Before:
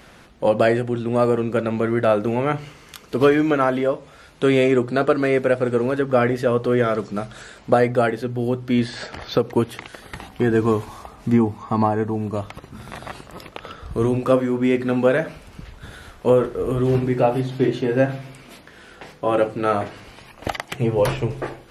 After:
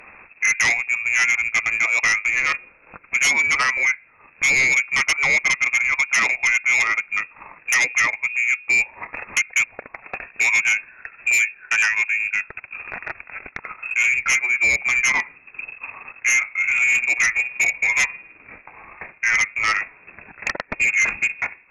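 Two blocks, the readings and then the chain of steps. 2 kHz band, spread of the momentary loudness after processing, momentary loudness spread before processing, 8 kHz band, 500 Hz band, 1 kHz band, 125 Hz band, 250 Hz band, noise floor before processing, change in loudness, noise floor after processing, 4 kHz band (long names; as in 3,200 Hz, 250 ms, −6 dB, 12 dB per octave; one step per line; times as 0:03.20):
+14.5 dB, 16 LU, 18 LU, can't be measured, −22.5 dB, −5.0 dB, below −20 dB, below −20 dB, −47 dBFS, +2.5 dB, −52 dBFS, +6.5 dB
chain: transient designer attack +2 dB, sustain −11 dB
voice inversion scrambler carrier 2,600 Hz
sine wavefolder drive 7 dB, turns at −5.5 dBFS
level −8 dB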